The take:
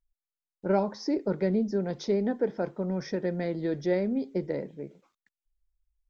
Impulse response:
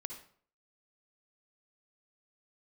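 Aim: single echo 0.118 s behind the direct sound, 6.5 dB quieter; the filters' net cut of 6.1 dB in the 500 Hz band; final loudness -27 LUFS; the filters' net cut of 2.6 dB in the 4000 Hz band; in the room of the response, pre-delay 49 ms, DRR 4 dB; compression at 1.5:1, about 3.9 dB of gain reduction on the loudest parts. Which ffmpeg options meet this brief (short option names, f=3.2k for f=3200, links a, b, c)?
-filter_complex "[0:a]equalizer=f=500:t=o:g=-8,equalizer=f=4k:t=o:g=-3.5,acompressor=threshold=-36dB:ratio=1.5,aecho=1:1:118:0.473,asplit=2[a][b];[1:a]atrim=start_sample=2205,adelay=49[c];[b][c]afir=irnorm=-1:irlink=0,volume=-1.5dB[d];[a][d]amix=inputs=2:normalize=0,volume=7dB"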